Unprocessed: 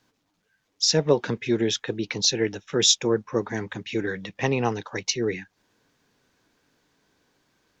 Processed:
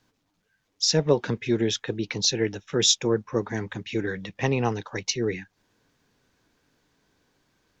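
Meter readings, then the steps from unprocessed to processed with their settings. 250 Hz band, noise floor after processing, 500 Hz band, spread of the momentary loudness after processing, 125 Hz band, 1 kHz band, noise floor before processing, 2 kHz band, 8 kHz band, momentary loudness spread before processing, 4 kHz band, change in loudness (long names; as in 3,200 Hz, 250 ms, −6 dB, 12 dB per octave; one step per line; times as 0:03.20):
−0.5 dB, −74 dBFS, −1.0 dB, 10 LU, +1.5 dB, −1.5 dB, −74 dBFS, −1.5 dB, −1.5 dB, 11 LU, −1.5 dB, −1.0 dB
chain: low-shelf EQ 110 Hz +7.5 dB
level −1.5 dB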